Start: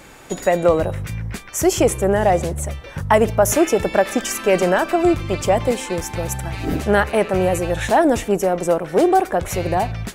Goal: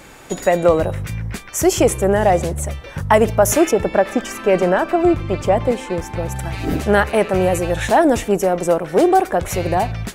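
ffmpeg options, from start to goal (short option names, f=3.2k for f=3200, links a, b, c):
-filter_complex "[0:a]asettb=1/sr,asplit=3[a][b][c];[a]atrim=end=3.714[d];[b]atrim=start=3.71:end=6.36,asetpts=PTS-STARTPTS,afade=t=in:d=0.004:c=qsin,afade=t=out:st=2.646:d=0.004:c=qsin,highshelf=f=3.1k:g=-11[e];[c]atrim=start=6.356[f];[d][e]acrossfade=d=0.004:c1=hsin:c2=qsin[g];[g][f]acrossfade=d=0.004:c1=qsin:c2=hsin,volume=1.5dB"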